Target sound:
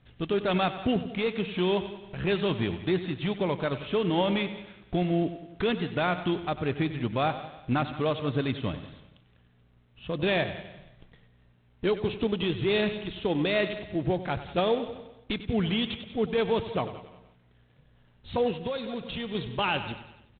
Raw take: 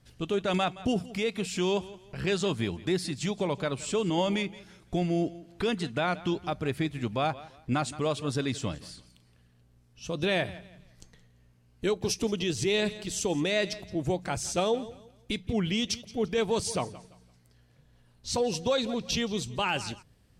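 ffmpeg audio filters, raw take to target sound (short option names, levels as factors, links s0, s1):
-filter_complex "[0:a]aecho=1:1:95|190|285|380|475:0.211|0.114|0.0616|0.0333|0.018,asettb=1/sr,asplit=3[s0][s1][s2];[s0]atrim=end=18.514[s3];[s1]atrim=start=18.51:end=19.35,asetpts=PTS-STARTPTS,afade=t=in:d=0.004:c=qsin,afade=t=out:st=0.836:d=0.004:c=qsin,acompressor=threshold=0.02:ratio=2.5[s4];[s2]atrim=start=19.346[s5];[s3][s4]acrossfade=d=0.004:c1=hsin:c2=qsin[s6];[s6][s5]acrossfade=d=0.004:c1=qsin:c2=hsin,volume=1.19" -ar 8000 -c:a adpcm_g726 -b:a 24k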